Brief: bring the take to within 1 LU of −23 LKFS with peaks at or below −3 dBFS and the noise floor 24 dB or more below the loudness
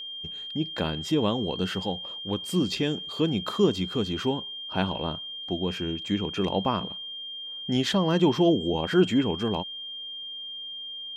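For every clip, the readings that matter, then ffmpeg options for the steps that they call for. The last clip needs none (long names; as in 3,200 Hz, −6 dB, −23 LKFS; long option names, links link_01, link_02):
interfering tone 3,200 Hz; level of the tone −35 dBFS; integrated loudness −27.5 LKFS; sample peak −8.5 dBFS; target loudness −23.0 LKFS
→ -af "bandreject=frequency=3200:width=30"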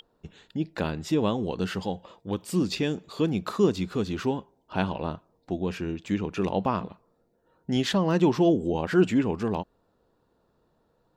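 interfering tone none found; integrated loudness −27.5 LKFS; sample peak −9.0 dBFS; target loudness −23.0 LKFS
→ -af "volume=4.5dB"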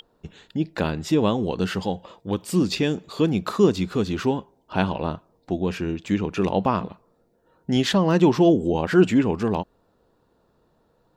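integrated loudness −23.0 LKFS; sample peak −4.5 dBFS; background noise floor −65 dBFS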